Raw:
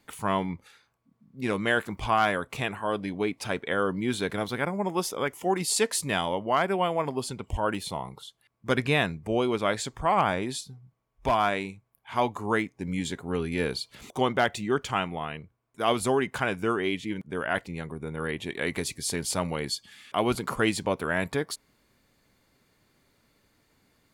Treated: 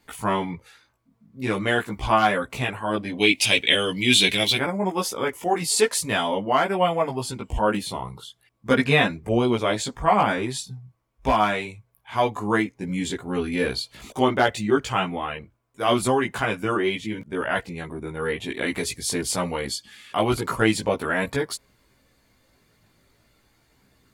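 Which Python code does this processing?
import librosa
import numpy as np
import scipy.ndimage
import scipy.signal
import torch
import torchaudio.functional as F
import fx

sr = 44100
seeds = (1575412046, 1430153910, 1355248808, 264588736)

y = fx.high_shelf_res(x, sr, hz=1900.0, db=12.0, q=3.0, at=(3.17, 4.56), fade=0.02)
y = fx.chorus_voices(y, sr, voices=4, hz=0.41, base_ms=17, depth_ms=2.2, mix_pct=50)
y = y * librosa.db_to_amplitude(7.0)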